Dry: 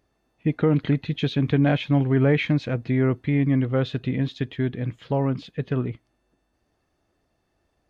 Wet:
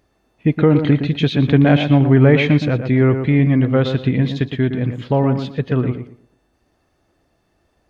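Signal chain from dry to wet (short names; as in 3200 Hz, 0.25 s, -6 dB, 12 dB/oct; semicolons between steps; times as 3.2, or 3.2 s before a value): tape echo 0.117 s, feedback 29%, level -6 dB, low-pass 1700 Hz; gain +7 dB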